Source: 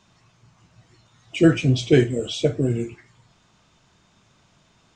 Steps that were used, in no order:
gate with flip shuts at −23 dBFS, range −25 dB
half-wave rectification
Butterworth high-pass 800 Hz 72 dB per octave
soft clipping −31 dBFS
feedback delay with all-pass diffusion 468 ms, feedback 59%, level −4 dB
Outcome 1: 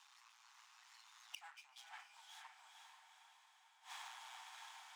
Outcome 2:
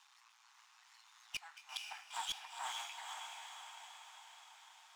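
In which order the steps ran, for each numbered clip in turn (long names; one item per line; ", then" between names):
half-wave rectification, then feedback delay with all-pass diffusion, then gate with flip, then soft clipping, then Butterworth high-pass
half-wave rectification, then Butterworth high-pass, then gate with flip, then feedback delay with all-pass diffusion, then soft clipping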